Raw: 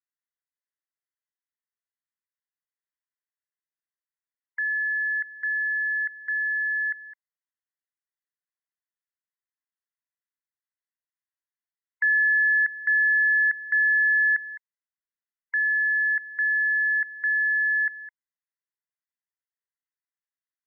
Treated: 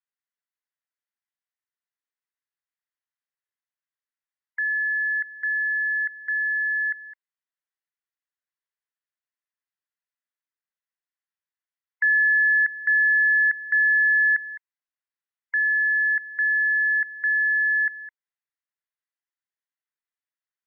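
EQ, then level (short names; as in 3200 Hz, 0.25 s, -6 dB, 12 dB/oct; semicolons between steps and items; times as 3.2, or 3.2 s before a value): LPF 1800 Hz; tilt +5.5 dB/oct; 0.0 dB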